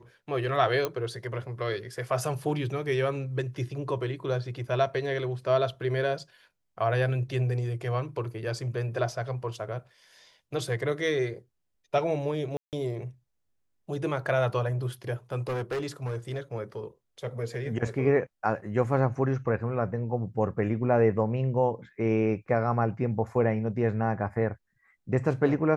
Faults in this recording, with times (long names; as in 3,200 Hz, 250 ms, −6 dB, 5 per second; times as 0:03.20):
0:00.85: click −14 dBFS
0:12.57–0:12.73: drop-out 158 ms
0:15.39–0:16.39: clipping −27 dBFS